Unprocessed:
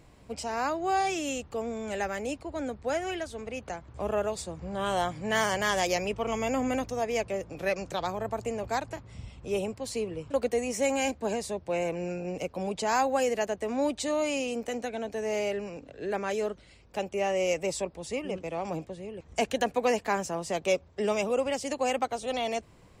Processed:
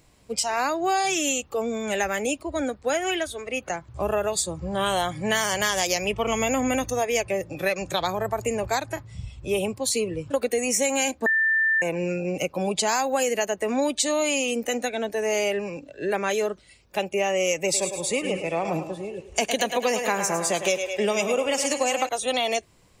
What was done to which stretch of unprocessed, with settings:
11.26–11.82 s: bleep 1.78 kHz -23 dBFS
17.60–22.09 s: thinning echo 105 ms, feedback 61%, high-pass 300 Hz, level -8 dB
whole clip: spectral noise reduction 11 dB; treble shelf 3 kHz +11 dB; compression, threshold -27 dBFS; trim +7 dB

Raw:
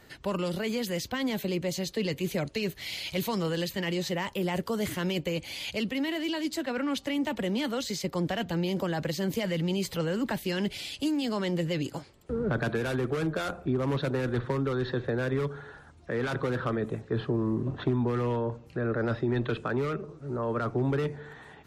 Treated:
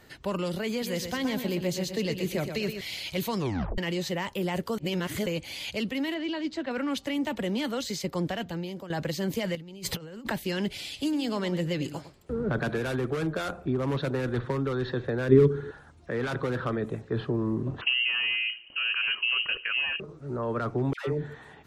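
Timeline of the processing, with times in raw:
0.70–2.81 s: feedback delay 122 ms, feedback 40%, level -7.5 dB
3.38 s: tape stop 0.40 s
4.78–5.26 s: reverse
6.14–6.71 s: distance through air 140 m
8.22–8.90 s: fade out, to -13.5 dB
9.55–10.30 s: compressor with a negative ratio -36 dBFS, ratio -0.5
10.86–12.84 s: delay 104 ms -13 dB
15.29–15.71 s: resonant low shelf 500 Hz +8.5 dB, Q 3
17.81–20.00 s: frequency inversion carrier 3 kHz
20.93–21.35 s: phase dispersion lows, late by 144 ms, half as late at 970 Hz

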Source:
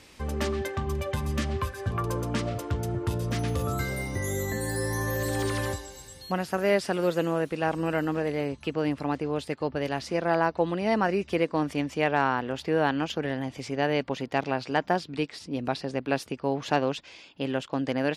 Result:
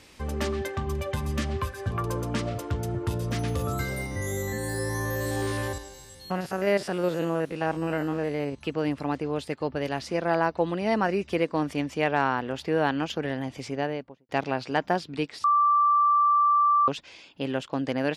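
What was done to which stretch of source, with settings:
4.06–8.59 s: spectrogram pixelated in time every 50 ms
13.63–14.29 s: studio fade out
15.44–16.88 s: bleep 1.17 kHz -17.5 dBFS

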